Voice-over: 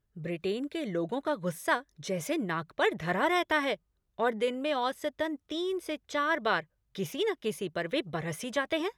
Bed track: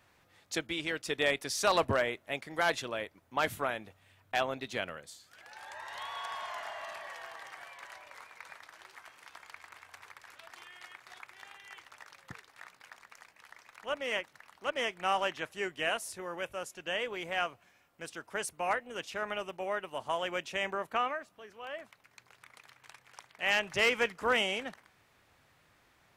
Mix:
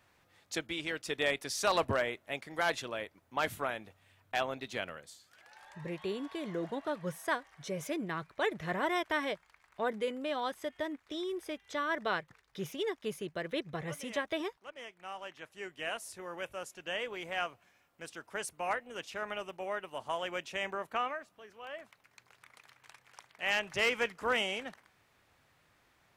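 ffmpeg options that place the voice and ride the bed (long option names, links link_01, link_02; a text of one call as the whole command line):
ffmpeg -i stem1.wav -i stem2.wav -filter_complex "[0:a]adelay=5600,volume=-5dB[link_01];[1:a]volume=9.5dB,afade=type=out:start_time=4.99:duration=1:silence=0.251189,afade=type=in:start_time=15.19:duration=1.19:silence=0.266073[link_02];[link_01][link_02]amix=inputs=2:normalize=0" out.wav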